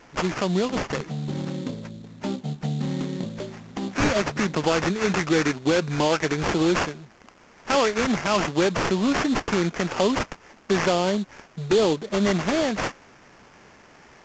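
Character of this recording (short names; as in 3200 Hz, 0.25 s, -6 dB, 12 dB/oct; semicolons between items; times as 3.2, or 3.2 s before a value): aliases and images of a low sample rate 3900 Hz, jitter 20%; A-law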